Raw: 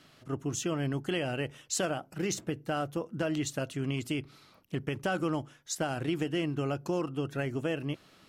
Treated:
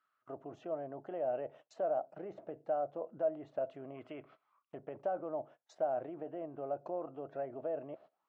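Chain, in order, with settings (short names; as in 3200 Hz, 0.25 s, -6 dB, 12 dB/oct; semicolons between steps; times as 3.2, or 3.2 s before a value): gate -48 dBFS, range -21 dB; treble ducked by the level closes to 1600 Hz, closed at -27.5 dBFS; spectral gain 3.95–4.7, 990–3500 Hz +9 dB; in parallel at -1 dB: negative-ratio compressor -37 dBFS, ratio -1; on the sum: auto-wah 640–1300 Hz, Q 5.5, down, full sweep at -34.5 dBFS; gain +1.5 dB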